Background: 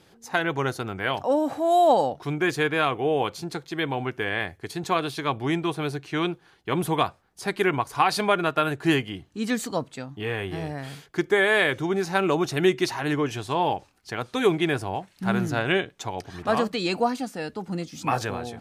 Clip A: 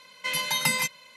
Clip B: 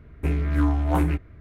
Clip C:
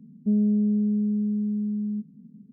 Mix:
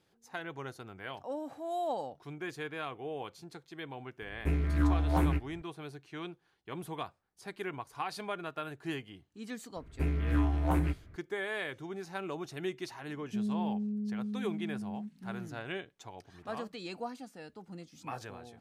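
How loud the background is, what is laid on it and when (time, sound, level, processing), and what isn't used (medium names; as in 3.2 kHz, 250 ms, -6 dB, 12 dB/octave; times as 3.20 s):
background -16 dB
4.22 s: add B -6 dB
9.76 s: add B -7 dB
13.07 s: add C -11.5 dB
not used: A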